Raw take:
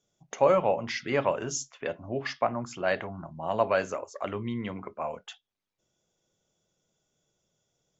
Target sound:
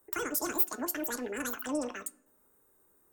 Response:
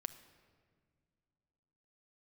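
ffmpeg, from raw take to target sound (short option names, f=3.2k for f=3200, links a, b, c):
-filter_complex "[0:a]aexciter=amount=3.2:drive=9.1:freq=2.5k,acrossover=split=140|3000[a][b][c];[b]acompressor=threshold=-44dB:ratio=2.5[d];[a][d][c]amix=inputs=3:normalize=0,bandreject=f=70.83:t=h:w=4,bandreject=f=141.66:t=h:w=4,bandreject=f=212.49:t=h:w=4,bandreject=f=283.32:t=h:w=4,bandreject=f=354.15:t=h:w=4,bandreject=f=424.98:t=h:w=4,bandreject=f=495.81:t=h:w=4,bandreject=f=566.64:t=h:w=4,bandreject=f=637.47:t=h:w=4,bandreject=f=708.3:t=h:w=4,bandreject=f=779.13:t=h:w=4,bandreject=f=849.96:t=h:w=4,bandreject=f=920.79:t=h:w=4,bandreject=f=991.62:t=h:w=4,bandreject=f=1.06245k:t=h:w=4,bandreject=f=1.13328k:t=h:w=4,bandreject=f=1.20411k:t=h:w=4,bandreject=f=1.27494k:t=h:w=4,bandreject=f=1.34577k:t=h:w=4,bandreject=f=1.4166k:t=h:w=4,bandreject=f=1.48743k:t=h:w=4,bandreject=f=1.55826k:t=h:w=4,bandreject=f=1.62909k:t=h:w=4,bandreject=f=1.69992k:t=h:w=4,bandreject=f=1.77075k:t=h:w=4,bandreject=f=1.84158k:t=h:w=4,bandreject=f=1.91241k:t=h:w=4,bandreject=f=1.98324k:t=h:w=4,bandreject=f=2.05407k:t=h:w=4,bandreject=f=2.1249k:t=h:w=4,bandreject=f=2.19573k:t=h:w=4,bandreject=f=2.26656k:t=h:w=4,bandreject=f=2.33739k:t=h:w=4,bandreject=f=2.40822k:t=h:w=4,bandreject=f=2.47905k:t=h:w=4,asplit=2[e][f];[f]equalizer=f=2.3k:w=4.1:g=4.5[g];[1:a]atrim=start_sample=2205[h];[g][h]afir=irnorm=-1:irlink=0,volume=-4dB[i];[e][i]amix=inputs=2:normalize=0,asetrate=112896,aresample=44100,acontrast=39,tiltshelf=f=1.4k:g=7,volume=-7dB"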